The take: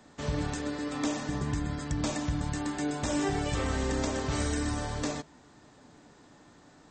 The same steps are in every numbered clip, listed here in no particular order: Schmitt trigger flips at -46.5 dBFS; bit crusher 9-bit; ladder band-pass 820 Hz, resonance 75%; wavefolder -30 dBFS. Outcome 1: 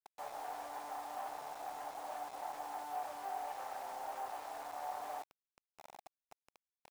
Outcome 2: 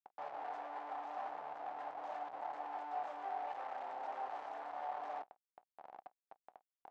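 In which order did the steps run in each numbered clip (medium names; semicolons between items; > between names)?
Schmitt trigger > wavefolder > ladder band-pass > bit crusher; Schmitt trigger > bit crusher > ladder band-pass > wavefolder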